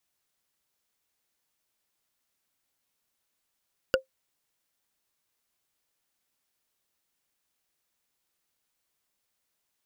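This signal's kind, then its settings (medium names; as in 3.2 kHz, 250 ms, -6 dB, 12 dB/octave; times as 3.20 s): wood hit, lowest mode 527 Hz, decay 0.12 s, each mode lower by 2.5 dB, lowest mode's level -15 dB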